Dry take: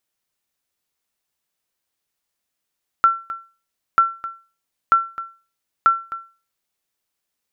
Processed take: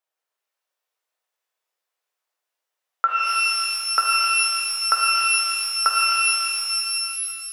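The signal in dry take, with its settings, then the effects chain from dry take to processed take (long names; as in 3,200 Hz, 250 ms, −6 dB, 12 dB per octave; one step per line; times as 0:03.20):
ping with an echo 1,350 Hz, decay 0.34 s, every 0.94 s, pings 4, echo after 0.26 s, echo −15.5 dB −6 dBFS
high-pass filter 460 Hz 24 dB per octave
high-shelf EQ 2,100 Hz −11.5 dB
reverb with rising layers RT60 3.2 s, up +12 semitones, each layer −2 dB, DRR −1.5 dB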